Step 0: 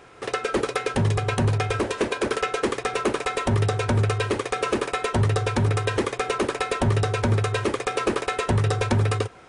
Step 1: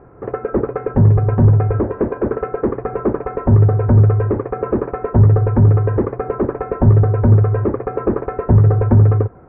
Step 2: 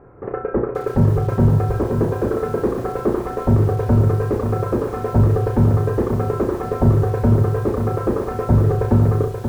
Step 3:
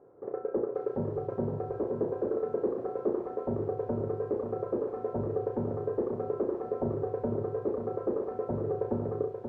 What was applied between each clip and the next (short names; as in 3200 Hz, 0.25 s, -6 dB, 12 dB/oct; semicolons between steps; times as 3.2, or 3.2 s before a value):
Bessel low-pass 970 Hz, order 6; low shelf 320 Hz +10 dB; gain +3 dB
on a send: flutter echo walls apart 5.8 m, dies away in 0.32 s; on the sum: lo-fi delay 0.531 s, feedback 35%, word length 6-bit, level -7 dB; gain -3 dB
band-pass 480 Hz, Q 1.4; gain -8 dB